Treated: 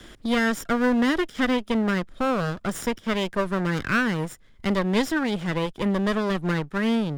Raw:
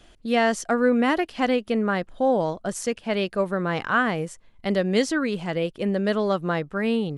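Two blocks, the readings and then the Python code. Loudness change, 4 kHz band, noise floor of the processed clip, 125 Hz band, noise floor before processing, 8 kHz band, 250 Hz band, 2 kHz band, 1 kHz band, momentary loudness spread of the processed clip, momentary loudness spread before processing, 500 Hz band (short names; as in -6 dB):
-0.5 dB, +1.0 dB, -51 dBFS, +2.5 dB, -54 dBFS, -2.5 dB, +1.0 dB, +0.5 dB, -2.0 dB, 5 LU, 6 LU, -3.5 dB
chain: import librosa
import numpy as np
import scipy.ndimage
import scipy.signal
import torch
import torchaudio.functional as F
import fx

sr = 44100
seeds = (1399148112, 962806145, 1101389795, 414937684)

y = fx.lower_of_two(x, sr, delay_ms=0.57)
y = fx.band_squash(y, sr, depth_pct=40)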